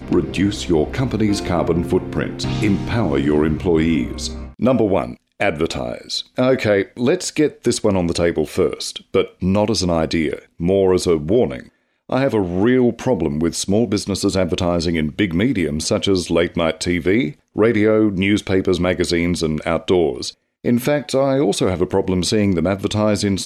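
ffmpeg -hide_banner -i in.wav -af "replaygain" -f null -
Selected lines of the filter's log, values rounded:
track_gain = -1.0 dB
track_peak = 0.457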